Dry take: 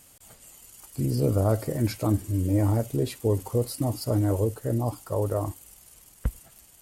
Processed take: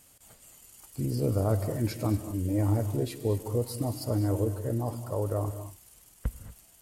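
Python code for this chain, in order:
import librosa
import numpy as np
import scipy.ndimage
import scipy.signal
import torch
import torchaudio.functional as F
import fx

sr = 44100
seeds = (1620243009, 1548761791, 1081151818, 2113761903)

y = fx.rev_gated(x, sr, seeds[0], gate_ms=260, shape='rising', drr_db=10.0)
y = F.gain(torch.from_numpy(y), -4.0).numpy()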